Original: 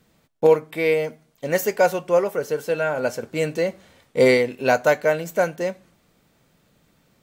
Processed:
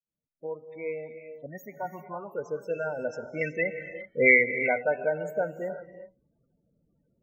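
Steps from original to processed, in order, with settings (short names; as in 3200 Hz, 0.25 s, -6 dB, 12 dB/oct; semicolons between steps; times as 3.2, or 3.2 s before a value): opening faded in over 2.04 s; loudest bins only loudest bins 16; 1.46–2.32 fixed phaser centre 2400 Hz, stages 8; 3.41–4.48 band shelf 2000 Hz +16 dB; non-linear reverb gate 0.4 s rising, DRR 9.5 dB; gain -8.5 dB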